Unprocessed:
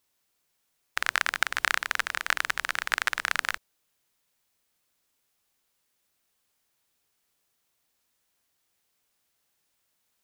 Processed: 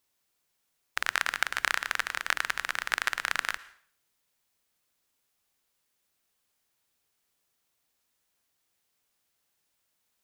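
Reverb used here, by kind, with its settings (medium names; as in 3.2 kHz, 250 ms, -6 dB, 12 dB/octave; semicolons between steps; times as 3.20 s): plate-style reverb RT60 0.51 s, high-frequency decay 0.95×, pre-delay 95 ms, DRR 18.5 dB; trim -2 dB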